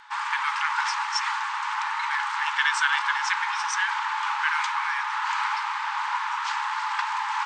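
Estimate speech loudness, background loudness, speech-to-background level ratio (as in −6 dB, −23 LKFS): −29.0 LKFS, −27.5 LKFS, −1.5 dB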